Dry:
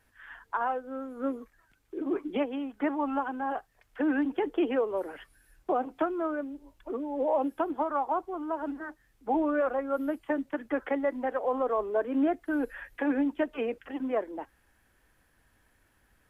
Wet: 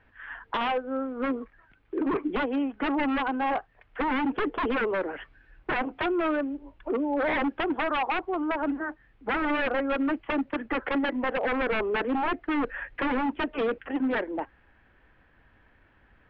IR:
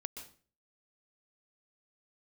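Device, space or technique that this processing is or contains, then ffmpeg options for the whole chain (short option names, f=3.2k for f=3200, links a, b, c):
synthesiser wavefolder: -af "aeval=exprs='0.0398*(abs(mod(val(0)/0.0398+3,4)-2)-1)':c=same,lowpass=f=3k:w=0.5412,lowpass=f=3k:w=1.3066,volume=7dB"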